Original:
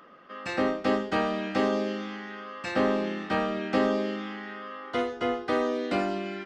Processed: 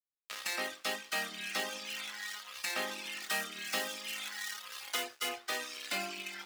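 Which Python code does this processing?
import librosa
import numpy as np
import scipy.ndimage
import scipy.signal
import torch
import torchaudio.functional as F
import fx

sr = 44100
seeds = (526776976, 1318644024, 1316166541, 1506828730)

y = fx.rattle_buzz(x, sr, strikes_db=-38.0, level_db=-31.0)
y = y + 10.0 ** (-22.5 / 20.0) * np.pad(y, (int(71 * sr / 1000.0), 0))[:len(y)]
y = fx.room_shoebox(y, sr, seeds[0], volume_m3=360.0, walls='furnished', distance_m=1.4)
y = np.sign(y) * np.maximum(np.abs(y) - 10.0 ** (-38.0 / 20.0), 0.0)
y = np.diff(y, prepend=0.0)
y = fx.dereverb_blind(y, sr, rt60_s=1.3)
y = fx.high_shelf(y, sr, hz=5200.0, db=7.0, at=(3.22, 5.29))
y = fx.band_squash(y, sr, depth_pct=70)
y = F.gain(torch.from_numpy(y), 8.0).numpy()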